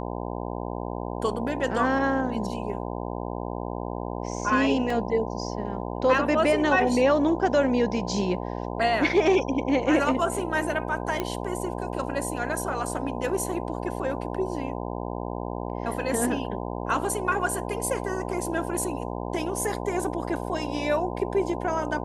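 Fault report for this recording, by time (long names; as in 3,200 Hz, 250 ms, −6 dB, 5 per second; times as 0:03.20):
mains buzz 60 Hz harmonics 17 −32 dBFS
0:04.90: drop-out 3.6 ms
0:11.20: click −13 dBFS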